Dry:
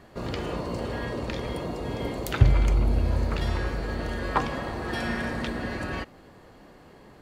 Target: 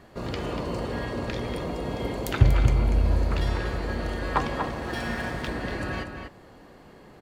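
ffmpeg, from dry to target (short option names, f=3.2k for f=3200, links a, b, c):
-filter_complex "[0:a]asettb=1/sr,asplit=3[a][b][c];[a]atrim=end=4.684[d];[b]atrim=start=4.68:end=5.48,asetpts=PTS-STARTPTS,afade=t=in:d=0.004:c=qsin,afade=t=out:st=0.796:d=0.004:c=qsin,aeval=exprs='sgn(val(0))*max(abs(val(0))-0.00668,0)':c=same[e];[c]atrim=start=5.476[f];[d][e]acrossfade=d=0.004:c1=hsin:c2=qsin[g];[g][f]acrossfade=d=0.004:c1=qsin:c2=hsin,asplit=2[h][i];[i]adelay=239.1,volume=-6dB,highshelf=f=4k:g=-5.38[j];[h][j]amix=inputs=2:normalize=0"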